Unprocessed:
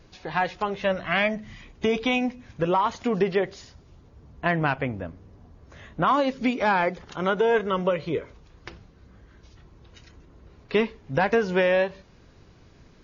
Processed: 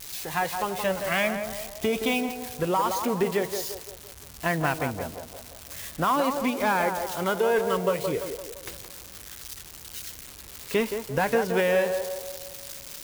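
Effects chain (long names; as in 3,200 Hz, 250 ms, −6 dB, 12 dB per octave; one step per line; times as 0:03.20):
spike at every zero crossing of −24 dBFS
feedback echo with a band-pass in the loop 171 ms, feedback 53%, band-pass 650 Hz, level −5 dB
level −2.5 dB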